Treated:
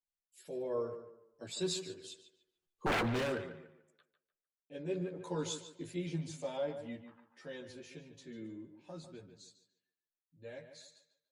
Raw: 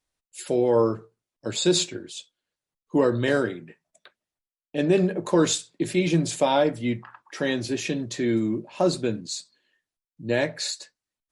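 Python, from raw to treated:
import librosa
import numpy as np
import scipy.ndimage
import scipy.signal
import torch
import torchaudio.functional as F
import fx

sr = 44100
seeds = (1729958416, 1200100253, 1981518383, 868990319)

y = fx.doppler_pass(x, sr, speed_mps=11, closest_m=2.0, pass_at_s=2.96)
y = fx.chorus_voices(y, sr, voices=4, hz=0.18, base_ms=12, depth_ms=1.3, mix_pct=55)
y = 10.0 ** (-28.0 / 20.0) * (np.abs((y / 10.0 ** (-28.0 / 20.0) + 3.0) % 4.0 - 2.0) - 1.0)
y = fx.echo_tape(y, sr, ms=147, feedback_pct=33, wet_db=-9.0, lp_hz=3500.0, drive_db=29.0, wow_cents=27)
y = fx.rider(y, sr, range_db=5, speed_s=0.5)
y = F.gain(torch.from_numpy(y), 3.5).numpy()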